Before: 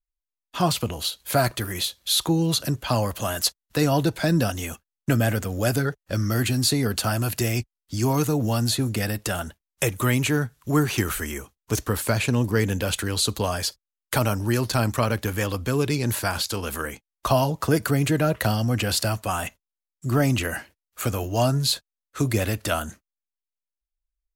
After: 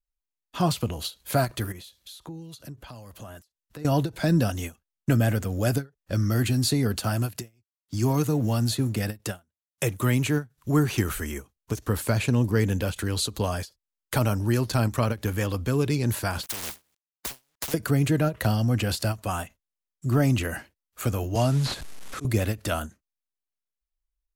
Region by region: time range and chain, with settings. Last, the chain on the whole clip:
1.72–3.85 s: compression 4:1, threshold -37 dBFS + harmonic tremolo 1.9 Hz, depth 50%, crossover 2 kHz
7.01–10.58 s: companding laws mixed up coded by A + high-pass 71 Hz 24 dB/octave
16.43–17.74 s: Butterworth band-stop 1.3 kHz, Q 1.9 + small samples zeroed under -33.5 dBFS + spectrum-flattening compressor 10:1
21.35–22.25 s: one-bit delta coder 64 kbps, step -31.5 dBFS + slow attack 263 ms + three bands compressed up and down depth 40%
whole clip: bass shelf 400 Hz +5.5 dB; endings held to a fixed fall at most 310 dB/s; trim -4.5 dB

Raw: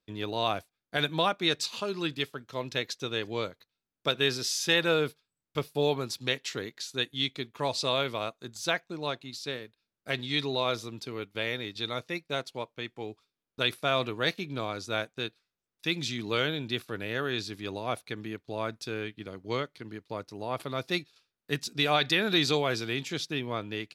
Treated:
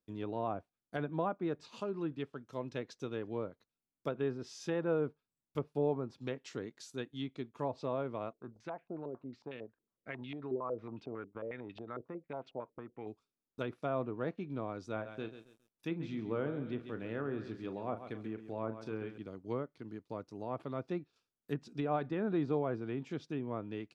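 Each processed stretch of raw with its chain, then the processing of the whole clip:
8.33–13.07 s: compression 2.5:1, threshold -36 dBFS + step-sequenced low-pass 11 Hz 390–2700 Hz
14.92–19.18 s: tone controls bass -1 dB, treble -6 dB + doubling 36 ms -10.5 dB + bit-crushed delay 136 ms, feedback 35%, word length 9-bit, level -11 dB
whole clip: graphic EQ 250/2000/4000 Hz +4/-6/-9 dB; low-pass that closes with the level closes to 1.3 kHz, closed at -26.5 dBFS; trim -6 dB

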